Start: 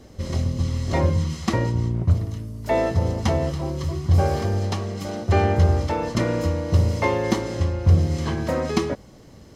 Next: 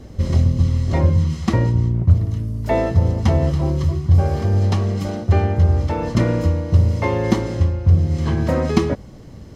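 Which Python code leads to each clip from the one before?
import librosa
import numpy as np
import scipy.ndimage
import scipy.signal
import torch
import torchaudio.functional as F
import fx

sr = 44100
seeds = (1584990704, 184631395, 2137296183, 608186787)

y = fx.low_shelf(x, sr, hz=230.0, db=6.0)
y = fx.rider(y, sr, range_db=5, speed_s=0.5)
y = fx.bass_treble(y, sr, bass_db=2, treble_db=-3)
y = F.gain(torch.from_numpy(y), -1.0).numpy()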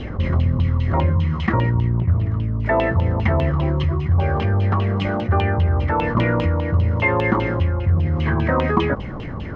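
y = fx.filter_lfo_lowpass(x, sr, shape='saw_down', hz=5.0, low_hz=930.0, high_hz=3200.0, q=6.5)
y = fx.env_flatten(y, sr, amount_pct=50)
y = F.gain(torch.from_numpy(y), -6.0).numpy()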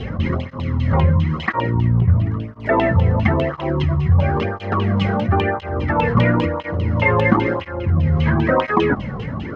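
y = fx.flanger_cancel(x, sr, hz=0.98, depth_ms=3.5)
y = F.gain(torch.from_numpy(y), 5.5).numpy()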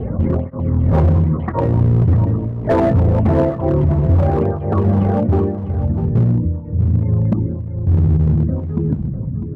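y = fx.filter_sweep_lowpass(x, sr, from_hz=620.0, to_hz=170.0, start_s=5.16, end_s=5.74, q=1.0)
y = np.clip(y, -10.0 ** (-13.5 / 20.0), 10.0 ** (-13.5 / 20.0))
y = y + 10.0 ** (-11.0 / 20.0) * np.pad(y, (int(650 * sr / 1000.0), 0))[:len(y)]
y = F.gain(torch.from_numpy(y), 4.0).numpy()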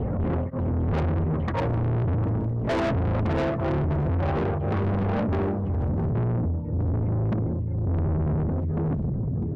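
y = 10.0 ** (-22.5 / 20.0) * np.tanh(x / 10.0 ** (-22.5 / 20.0))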